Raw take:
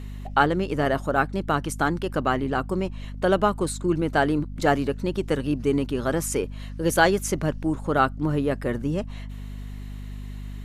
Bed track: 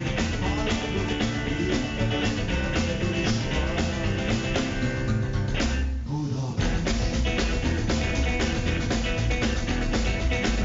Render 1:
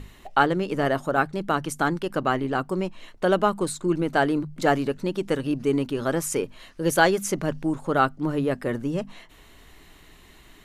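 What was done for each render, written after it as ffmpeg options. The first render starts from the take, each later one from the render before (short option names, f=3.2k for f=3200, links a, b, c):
-af "bandreject=f=50:t=h:w=6,bandreject=f=100:t=h:w=6,bandreject=f=150:t=h:w=6,bandreject=f=200:t=h:w=6,bandreject=f=250:t=h:w=6"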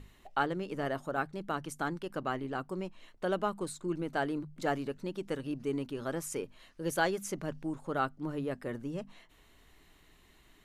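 -af "volume=-11dB"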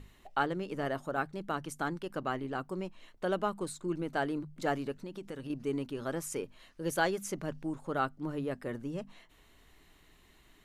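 -filter_complex "[0:a]asettb=1/sr,asplit=3[a][b][c];[a]atrim=end=4.974[d];[b]atrim=start=4.97:end=5.5,asetpts=PTS-STARTPTS,afade=t=in:d=0.004:c=qsin,afade=t=out:st=0.526:d=0.004:c=qsin,acompressor=threshold=-37dB:ratio=6:attack=3.2:release=140:knee=1:detection=peak[e];[c]atrim=start=5.496[f];[d][e]acrossfade=d=0.004:c1=hsin:c2=qsin[g];[g][f]acrossfade=d=0.004:c1=qsin:c2=hsin"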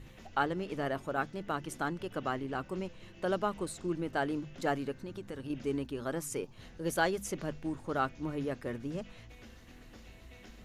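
-filter_complex "[1:a]volume=-28.5dB[a];[0:a][a]amix=inputs=2:normalize=0"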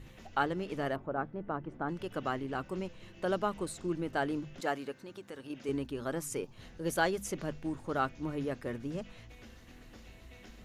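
-filter_complex "[0:a]asplit=3[a][b][c];[a]afade=t=out:st=0.95:d=0.02[d];[b]lowpass=1.2k,afade=t=in:st=0.95:d=0.02,afade=t=out:st=1.88:d=0.02[e];[c]afade=t=in:st=1.88:d=0.02[f];[d][e][f]amix=inputs=3:normalize=0,asettb=1/sr,asplit=3[g][h][i];[g]atrim=end=4.604[j];[h]atrim=start=4.6:end=5.69,asetpts=PTS-STARTPTS,afade=t=in:d=0.004:c=qsin,afade=t=out:st=1.086:d=0.004:c=qsin,highpass=f=410:p=1[k];[i]atrim=start=5.686[l];[j][k]acrossfade=d=0.004:c1=hsin:c2=qsin[m];[m][l]acrossfade=d=0.004:c1=qsin:c2=hsin"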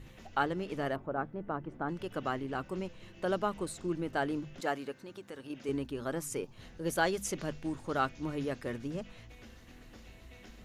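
-filter_complex "[0:a]asettb=1/sr,asplit=3[a][b][c];[a]atrim=end=7.074[d];[b]atrim=start=7.07:end=8.88,asetpts=PTS-STARTPTS,afade=t=in:d=0.004:c=qsin,afade=t=out:st=1.806:d=0.004:c=qsin,equalizer=f=5.2k:w=0.46:g=4.5[e];[c]atrim=start=8.876[f];[d][e]acrossfade=d=0.004:c1=hsin:c2=qsin[g];[g][f]acrossfade=d=0.004:c1=qsin:c2=hsin"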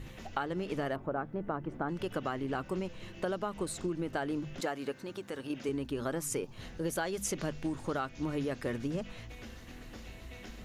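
-filter_complex "[0:a]asplit=2[a][b];[b]alimiter=level_in=2.5dB:limit=-24dB:level=0:latency=1:release=188,volume=-2.5dB,volume=-1dB[c];[a][c]amix=inputs=2:normalize=0,acompressor=threshold=-30dB:ratio=10"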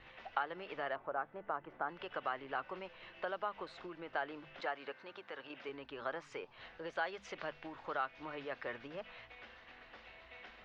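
-filter_complex "[0:a]lowpass=f=5.6k:w=0.5412,lowpass=f=5.6k:w=1.3066,acrossover=split=570 3500:gain=0.0891 1 0.0708[a][b][c];[a][b][c]amix=inputs=3:normalize=0"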